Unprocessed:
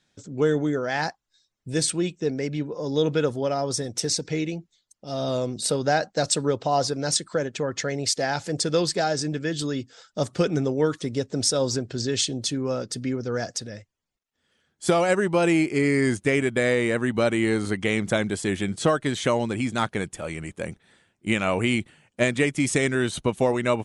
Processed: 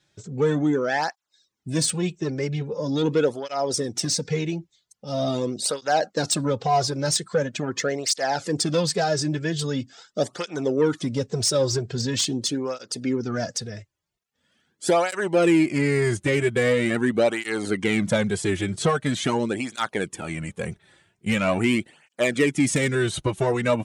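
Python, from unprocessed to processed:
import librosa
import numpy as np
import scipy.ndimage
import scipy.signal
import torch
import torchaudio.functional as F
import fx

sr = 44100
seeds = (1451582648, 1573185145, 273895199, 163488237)

y = 10.0 ** (-15.0 / 20.0) * np.tanh(x / 10.0 ** (-15.0 / 20.0))
y = fx.flanger_cancel(y, sr, hz=0.43, depth_ms=4.5)
y = y * 10.0 ** (5.0 / 20.0)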